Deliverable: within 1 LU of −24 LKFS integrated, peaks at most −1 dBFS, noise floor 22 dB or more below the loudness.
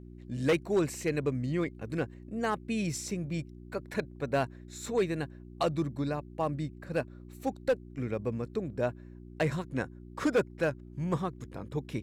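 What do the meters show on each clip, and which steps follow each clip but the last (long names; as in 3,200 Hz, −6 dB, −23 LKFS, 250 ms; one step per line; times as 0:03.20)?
share of clipped samples 0.5%; peaks flattened at −20.5 dBFS; mains hum 60 Hz; hum harmonics up to 360 Hz; level of the hum −45 dBFS; integrated loudness −33.5 LKFS; sample peak −20.5 dBFS; target loudness −24.0 LKFS
→ clipped peaks rebuilt −20.5 dBFS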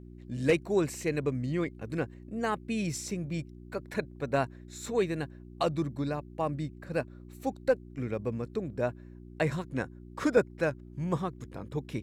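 share of clipped samples 0.0%; mains hum 60 Hz; hum harmonics up to 360 Hz; level of the hum −45 dBFS
→ hum removal 60 Hz, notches 6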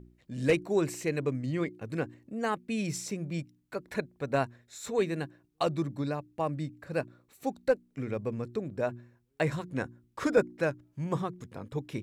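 mains hum none found; integrated loudness −33.0 LKFS; sample peak −12.5 dBFS; target loudness −24.0 LKFS
→ level +9 dB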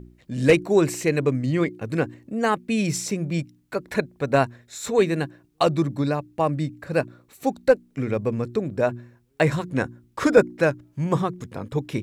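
integrated loudness −24.0 LKFS; sample peak −3.5 dBFS; background noise floor −62 dBFS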